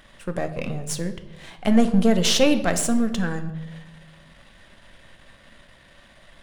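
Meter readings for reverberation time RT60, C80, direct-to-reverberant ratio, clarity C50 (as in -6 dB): 1.1 s, 14.0 dB, 8.0 dB, 12.0 dB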